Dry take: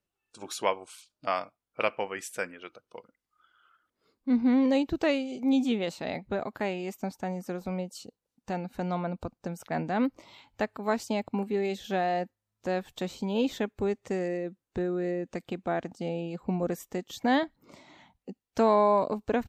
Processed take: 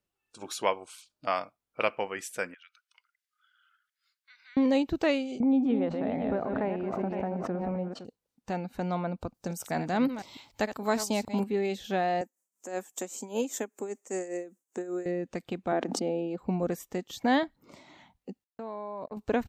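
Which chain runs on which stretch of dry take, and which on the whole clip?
2.54–4.57 Chebyshev high-pass 1500 Hz, order 4 + compressor 2:1, threshold -56 dBFS
5.4–8.05 regenerating reverse delay 0.257 s, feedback 54%, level -7 dB + LPF 1300 Hz + backwards sustainer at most 27 dB/s
9.34–11.44 reverse delay 0.147 s, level -11 dB + tone controls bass +1 dB, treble +10 dB
12.21–15.06 HPF 240 Hz 24 dB/oct + tremolo 5.1 Hz, depth 72% + resonant high shelf 5400 Hz +10.5 dB, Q 3
15.72–16.38 HPF 240 Hz 24 dB/oct + tilt -3 dB/oct + backwards sustainer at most 35 dB/s
18.44–19.17 LPF 2400 Hz 6 dB/oct + gate -32 dBFS, range -44 dB + level quantiser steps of 19 dB
whole clip: dry

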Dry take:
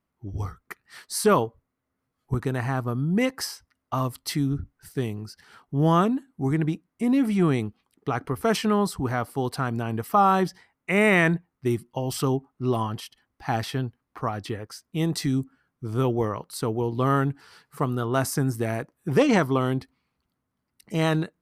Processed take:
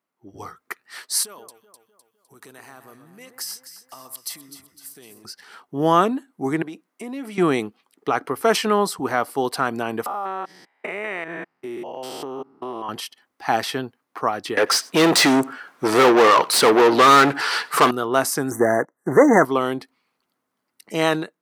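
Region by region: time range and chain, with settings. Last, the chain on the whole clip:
1.23–5.25 compressor 12:1, threshold -31 dBFS + pre-emphasis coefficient 0.8 + echo with dull and thin repeats by turns 0.127 s, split 1600 Hz, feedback 69%, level -8.5 dB
6.62–7.38 HPF 210 Hz + compressor 3:1, threshold -36 dBFS
10.06–12.89 stepped spectrum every 0.2 s + tone controls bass -10 dB, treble -11 dB + compressor 5:1, threshold -32 dBFS
14.57–17.91 overdrive pedal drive 31 dB, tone 3800 Hz, clips at -11.5 dBFS + echo 92 ms -23 dB
18.51–19.45 high shelf 7400 Hz -10 dB + sample leveller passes 2 + brick-wall FIR band-stop 2100–5800 Hz
whole clip: HPF 330 Hz 12 dB/oct; AGC gain up to 7.5 dB

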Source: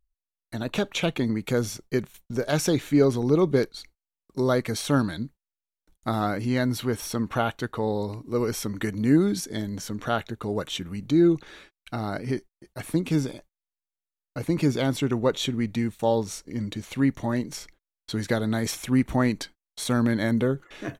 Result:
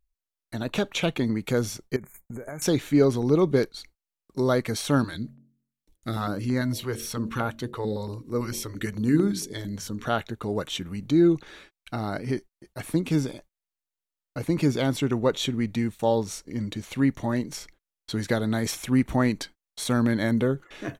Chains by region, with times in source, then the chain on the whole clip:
1.96–2.62 compressor 16:1, threshold -32 dBFS + brick-wall FIR band-stop 2400–6300 Hz + high shelf 10000 Hz +5 dB
5.04–10.05 bell 720 Hz -6.5 dB 0.46 oct + de-hum 45.36 Hz, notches 14 + stepped notch 8.9 Hz 210–3000 Hz
whole clip: dry

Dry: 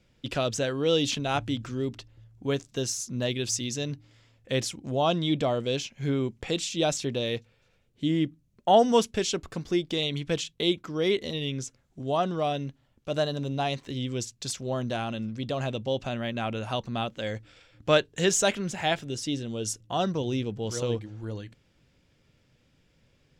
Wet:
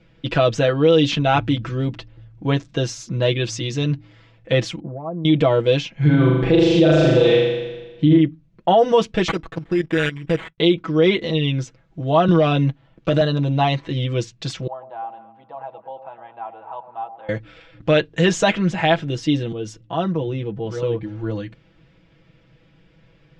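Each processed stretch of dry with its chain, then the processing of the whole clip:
4.8–5.25 steep low-pass 1200 Hz + compressor 10:1, threshold -37 dBFS
5.95–8.18 tone controls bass +1 dB, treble -7 dB + comb 5.9 ms, depth 51% + flutter echo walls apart 6.8 m, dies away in 1.2 s
9.28–10.58 expander -48 dBFS + level quantiser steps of 15 dB + sample-rate reducer 5300 Hz
12.28–13.21 sample leveller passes 1 + three-band squash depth 40%
14.67–17.29 band-pass 880 Hz, Q 8.4 + air absorption 64 m + echo with dull and thin repeats by turns 0.11 s, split 810 Hz, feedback 51%, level -8.5 dB
19.52–21.03 high shelf 3800 Hz -7 dB + compressor 1.5:1, threshold -39 dBFS + three-band expander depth 40%
whole clip: LPF 3000 Hz 12 dB/oct; comb 6.1 ms, depth 79%; maximiser +14 dB; gain -5 dB

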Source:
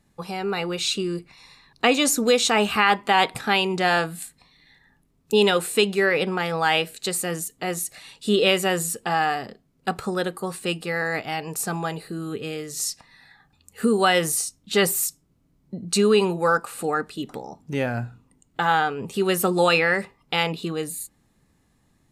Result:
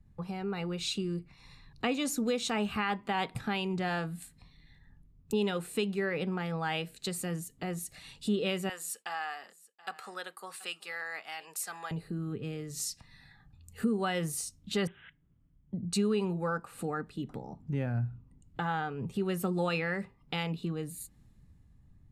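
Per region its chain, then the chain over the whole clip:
8.69–11.91 HPF 930 Hz + expander -48 dBFS + echo 0.728 s -21.5 dB
14.87–15.74 rippled Chebyshev low-pass 5900 Hz, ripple 6 dB + careless resampling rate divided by 6×, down none, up filtered
whole clip: tone controls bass +12 dB, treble -4 dB; compressor 2:1, threshold -41 dBFS; three-band expander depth 40%

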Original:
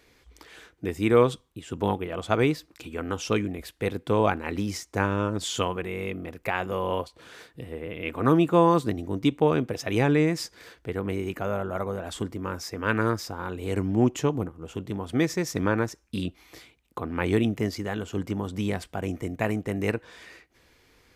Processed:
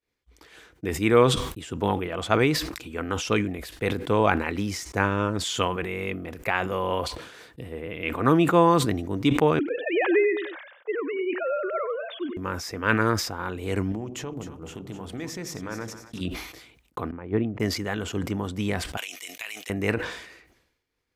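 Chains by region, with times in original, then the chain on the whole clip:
9.59–12.37 sine-wave speech + HPF 260 Hz + feedback echo 95 ms, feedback 18%, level -14 dB
13.92–16.21 compressor 4:1, threshold -32 dBFS + notches 50/100/150/200/250/300/350/400 Hz + split-band echo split 680 Hz, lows 88 ms, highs 0.254 s, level -11 dB
17.11–17.6 Bessel low-pass 1100 Hz + upward expander 2.5:1, over -32 dBFS
18.97–19.7 HPF 1300 Hz + resonant high shelf 2100 Hz +11 dB, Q 1.5 + compressor 10:1, threshold -34 dBFS
whole clip: expander -46 dBFS; dynamic EQ 1900 Hz, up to +4 dB, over -42 dBFS, Q 0.71; sustainer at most 66 dB/s

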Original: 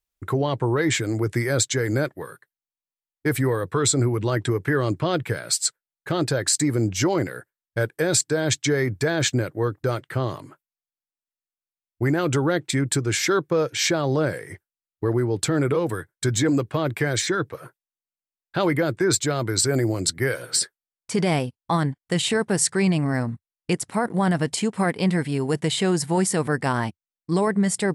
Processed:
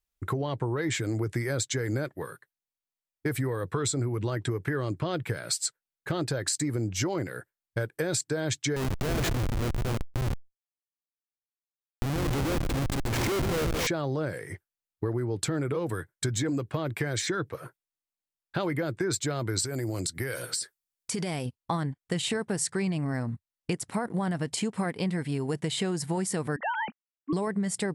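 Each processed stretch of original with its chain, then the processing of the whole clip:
8.76–13.87 feedback echo 0.139 s, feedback 53%, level -7.5 dB + Schmitt trigger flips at -21.5 dBFS + fast leveller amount 50%
19.65–21.46 high shelf 3700 Hz +8.5 dB + compressor, threshold -25 dBFS
26.56–27.33 sine-wave speech + low shelf 300 Hz -10 dB
whole clip: low shelf 120 Hz +4.5 dB; compressor 5:1, threshold -24 dBFS; gain -2 dB

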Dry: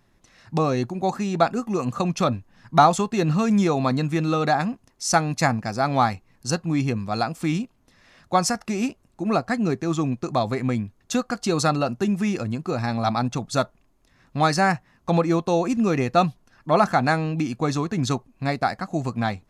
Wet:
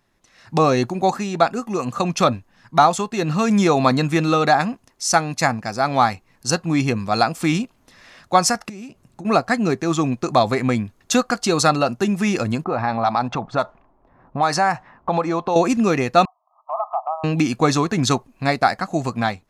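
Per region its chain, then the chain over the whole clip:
8.69–9.25 bell 140 Hz +12 dB 1.2 oct + compressor 12:1, threshold -34 dBFS
12.64–15.56 bell 890 Hz +8 dB 1.3 oct + low-pass opened by the level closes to 740 Hz, open at -11 dBFS + compressor 2.5:1, threshold -29 dBFS
16.25–17.24 brick-wall FIR band-pass 610–1300 Hz + compressor 2:1, threshold -37 dBFS
whole clip: low shelf 300 Hz -7 dB; AGC gain up to 11.5 dB; gain -1 dB

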